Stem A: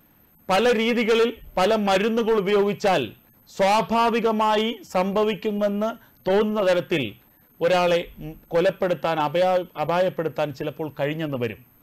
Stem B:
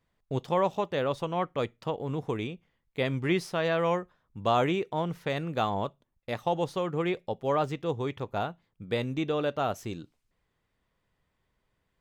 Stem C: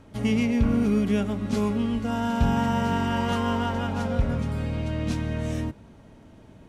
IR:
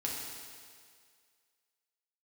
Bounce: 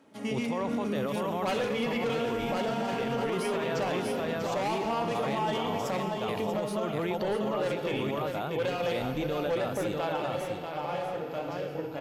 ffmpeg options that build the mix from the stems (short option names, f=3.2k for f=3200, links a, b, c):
-filter_complex "[0:a]bandreject=f=50:t=h:w=6,bandreject=f=100:t=h:w=6,bandreject=f=150:t=h:w=6,bandreject=f=200:t=h:w=6,bandreject=f=250:t=h:w=6,bandreject=f=300:t=h:w=6,bandreject=f=350:t=h:w=6,bandreject=f=400:t=h:w=6,acompressor=threshold=-31dB:ratio=2,adelay=950,volume=-4.5dB,asplit=3[a][b][c];[b]volume=-3.5dB[d];[c]volume=-5.5dB[e];[1:a]equalizer=f=10k:t=o:w=0.38:g=12,volume=0dB,asplit=3[f][g][h];[g]volume=-7dB[i];[2:a]highpass=220,volume=-8.5dB,asplit=2[j][k];[k]volume=-6.5dB[l];[h]apad=whole_len=563383[m];[a][m]sidechaingate=range=-33dB:threshold=-57dB:ratio=16:detection=peak[n];[f][j]amix=inputs=2:normalize=0,highpass=120,alimiter=limit=-23.5dB:level=0:latency=1:release=21,volume=0dB[o];[3:a]atrim=start_sample=2205[p];[d][l]amix=inputs=2:normalize=0[q];[q][p]afir=irnorm=-1:irlink=0[r];[e][i]amix=inputs=2:normalize=0,aecho=0:1:640|1280|1920|2560:1|0.28|0.0784|0.022[s];[n][o][r][s]amix=inputs=4:normalize=0,alimiter=limit=-22dB:level=0:latency=1:release=34"